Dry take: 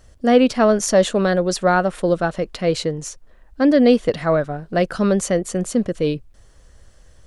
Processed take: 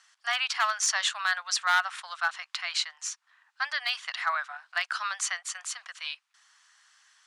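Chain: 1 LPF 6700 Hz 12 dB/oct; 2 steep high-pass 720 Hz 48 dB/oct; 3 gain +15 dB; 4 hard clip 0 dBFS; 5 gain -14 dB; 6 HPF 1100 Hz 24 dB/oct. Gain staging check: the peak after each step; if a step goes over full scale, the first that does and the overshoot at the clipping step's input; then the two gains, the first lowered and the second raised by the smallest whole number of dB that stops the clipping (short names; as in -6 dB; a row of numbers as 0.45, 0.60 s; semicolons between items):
-2.0, -7.0, +8.0, 0.0, -14.0, -12.5 dBFS; step 3, 8.0 dB; step 3 +7 dB, step 5 -6 dB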